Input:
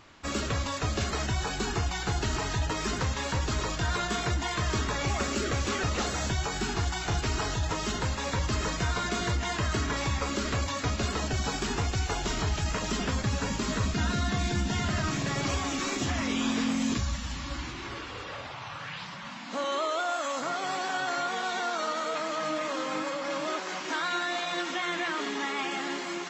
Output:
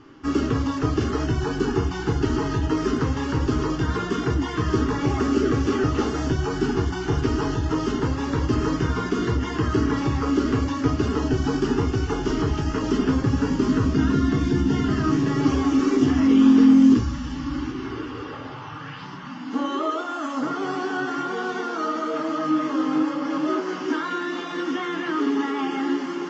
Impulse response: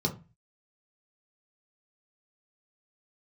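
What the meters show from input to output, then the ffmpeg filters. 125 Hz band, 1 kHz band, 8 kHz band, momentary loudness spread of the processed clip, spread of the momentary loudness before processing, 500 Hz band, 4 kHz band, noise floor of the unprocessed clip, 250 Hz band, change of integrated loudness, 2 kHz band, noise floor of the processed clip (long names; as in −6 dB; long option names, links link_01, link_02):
+6.0 dB, +3.0 dB, −6.5 dB, 8 LU, 4 LU, +7.5 dB, −3.0 dB, −39 dBFS, +13.5 dB, +7.5 dB, 0.0 dB, −34 dBFS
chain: -filter_complex "[0:a]lowpass=3700,asplit=2[link_01][link_02];[link_02]lowshelf=frequency=230:width_type=q:width=3:gain=-6.5[link_03];[1:a]atrim=start_sample=2205[link_04];[link_03][link_04]afir=irnorm=-1:irlink=0,volume=-7dB[link_05];[link_01][link_05]amix=inputs=2:normalize=0,volume=2dB"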